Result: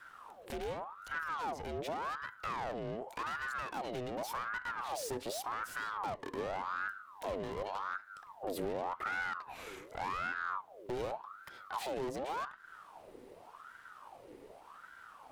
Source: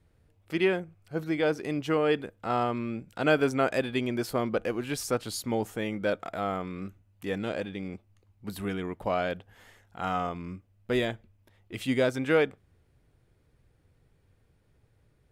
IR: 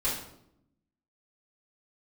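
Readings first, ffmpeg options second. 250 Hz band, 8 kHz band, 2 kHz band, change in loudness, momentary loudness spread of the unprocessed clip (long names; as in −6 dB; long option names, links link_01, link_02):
−16.0 dB, −6.5 dB, −5.5 dB, −9.5 dB, 14 LU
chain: -filter_complex "[0:a]acompressor=threshold=-33dB:ratio=3,aeval=exprs='(tanh(141*val(0)+0.35)-tanh(0.35))/141':channel_layout=same,acrossover=split=130[link_01][link_02];[link_02]acompressor=threshold=-59dB:ratio=2.5[link_03];[link_01][link_03]amix=inputs=2:normalize=0,asplit=2[link_04][link_05];[1:a]atrim=start_sample=2205[link_06];[link_05][link_06]afir=irnorm=-1:irlink=0,volume=-28.5dB[link_07];[link_04][link_07]amix=inputs=2:normalize=0,aeval=exprs='val(0)*sin(2*PI*930*n/s+930*0.6/0.87*sin(2*PI*0.87*n/s))':channel_layout=same,volume=14.5dB"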